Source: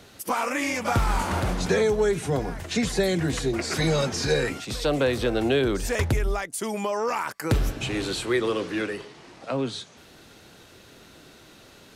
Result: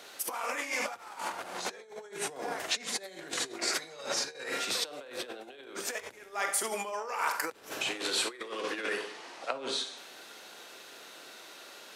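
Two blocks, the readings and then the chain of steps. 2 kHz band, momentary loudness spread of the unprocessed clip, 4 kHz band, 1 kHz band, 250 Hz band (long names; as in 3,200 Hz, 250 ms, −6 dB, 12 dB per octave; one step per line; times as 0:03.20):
−5.0 dB, 7 LU, −2.0 dB, −6.5 dB, −18.5 dB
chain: four-comb reverb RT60 0.62 s, combs from 32 ms, DRR 6 dB
compressor whose output falls as the input rises −29 dBFS, ratio −0.5
high-pass filter 530 Hz 12 dB per octave
level −3 dB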